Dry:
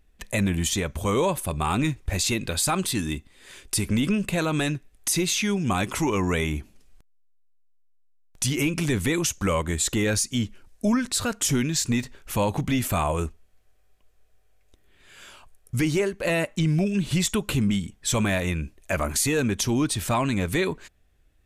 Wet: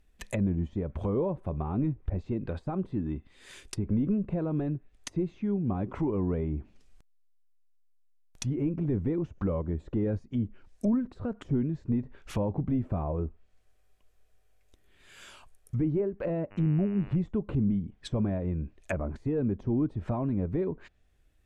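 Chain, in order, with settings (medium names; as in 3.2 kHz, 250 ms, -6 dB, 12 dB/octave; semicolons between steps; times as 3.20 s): low-pass that closes with the level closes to 540 Hz, closed at -22.5 dBFS; 16.50–17.15 s: mains buzz 100 Hz, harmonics 29, -48 dBFS -3 dB/octave; trim -3.5 dB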